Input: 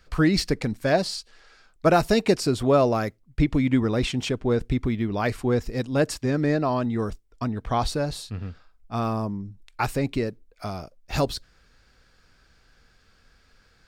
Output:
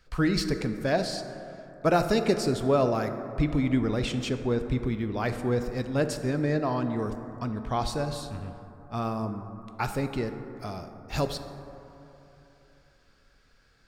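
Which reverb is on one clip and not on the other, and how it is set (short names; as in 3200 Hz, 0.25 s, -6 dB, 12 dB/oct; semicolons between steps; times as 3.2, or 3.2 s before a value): plate-style reverb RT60 3.2 s, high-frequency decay 0.3×, DRR 7.5 dB; gain -4.5 dB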